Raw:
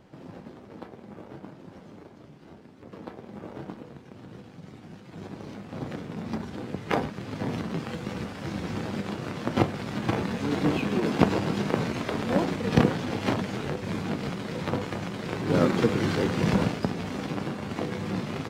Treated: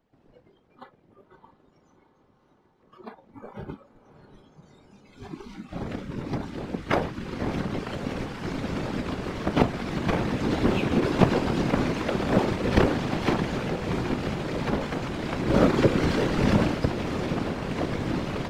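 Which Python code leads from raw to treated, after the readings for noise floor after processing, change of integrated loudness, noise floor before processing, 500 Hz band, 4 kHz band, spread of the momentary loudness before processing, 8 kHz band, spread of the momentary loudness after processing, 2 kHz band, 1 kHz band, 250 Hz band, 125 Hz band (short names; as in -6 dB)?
-63 dBFS, +2.0 dB, -49 dBFS, +2.5 dB, +1.5 dB, 21 LU, +0.5 dB, 17 LU, +2.0 dB, +2.0 dB, +1.5 dB, +2.0 dB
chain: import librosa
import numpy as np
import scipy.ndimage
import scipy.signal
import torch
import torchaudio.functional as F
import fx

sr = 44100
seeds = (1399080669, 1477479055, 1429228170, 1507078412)

p1 = fx.high_shelf(x, sr, hz=7400.0, db=-4.0)
p2 = fx.whisperise(p1, sr, seeds[0])
p3 = fx.noise_reduce_blind(p2, sr, reduce_db=18)
p4 = p3 + fx.echo_diffused(p3, sr, ms=625, feedback_pct=79, wet_db=-14.0, dry=0)
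y = p4 * 10.0 ** (2.0 / 20.0)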